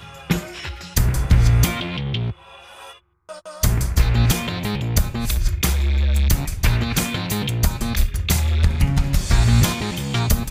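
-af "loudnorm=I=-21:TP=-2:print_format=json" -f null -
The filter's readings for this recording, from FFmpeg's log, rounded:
"input_i" : "-20.3",
"input_tp" : "-4.0",
"input_lra" : "2.2",
"input_thresh" : "-30.8",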